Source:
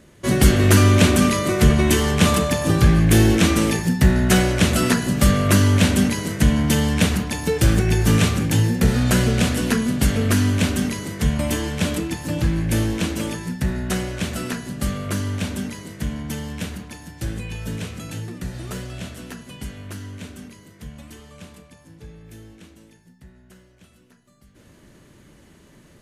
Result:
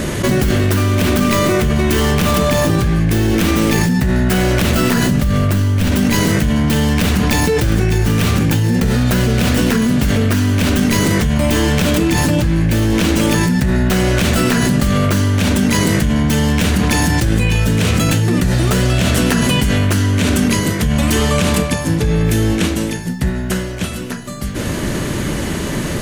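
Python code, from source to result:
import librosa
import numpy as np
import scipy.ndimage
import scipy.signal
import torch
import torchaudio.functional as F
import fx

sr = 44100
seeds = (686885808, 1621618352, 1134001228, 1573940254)

y = fx.tracing_dist(x, sr, depth_ms=0.29)
y = fx.low_shelf(y, sr, hz=130.0, db=9.5, at=(5.11, 5.92))
y = fx.env_flatten(y, sr, amount_pct=100)
y = y * 10.0 ** (-9.5 / 20.0)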